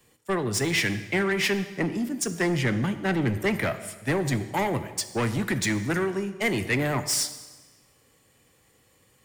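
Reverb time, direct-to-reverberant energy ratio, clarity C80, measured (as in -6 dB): 1.3 s, 10.0 dB, 13.5 dB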